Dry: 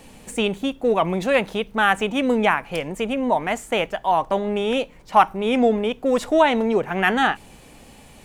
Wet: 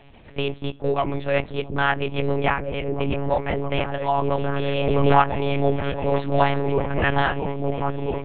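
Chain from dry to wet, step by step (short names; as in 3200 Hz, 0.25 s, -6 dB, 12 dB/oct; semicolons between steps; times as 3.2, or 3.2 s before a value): repeats that get brighter 0.666 s, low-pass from 200 Hz, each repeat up 1 oct, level 0 dB; monotone LPC vocoder at 8 kHz 140 Hz; 4.19–5.62 backwards sustainer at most 23 dB/s; gain -3 dB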